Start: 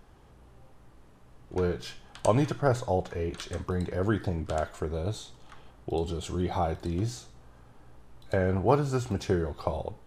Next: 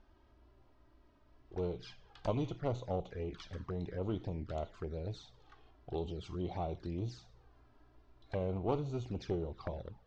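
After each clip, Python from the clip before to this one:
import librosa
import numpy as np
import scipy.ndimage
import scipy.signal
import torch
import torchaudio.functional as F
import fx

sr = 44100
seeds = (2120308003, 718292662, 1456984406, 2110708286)

y = fx.diode_clip(x, sr, knee_db=-27.5)
y = fx.env_flanger(y, sr, rest_ms=3.6, full_db=-27.5)
y = scipy.signal.sosfilt(scipy.signal.cheby1(3, 1.0, 5100.0, 'lowpass', fs=sr, output='sos'), y)
y = F.gain(torch.from_numpy(y), -6.5).numpy()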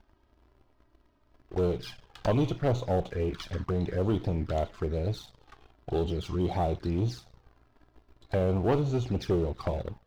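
y = fx.leveller(x, sr, passes=2)
y = F.gain(torch.from_numpy(y), 3.0).numpy()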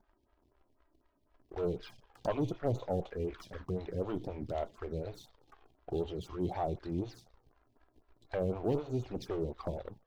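y = fx.stagger_phaser(x, sr, hz=4.0)
y = F.gain(torch.from_numpy(y), -4.0).numpy()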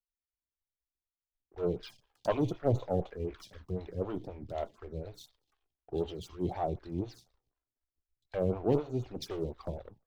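y = fx.band_widen(x, sr, depth_pct=100)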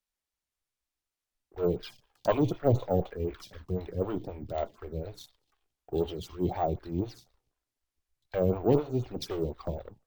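y = np.repeat(x[::2], 2)[:len(x)]
y = F.gain(torch.from_numpy(y), 4.0).numpy()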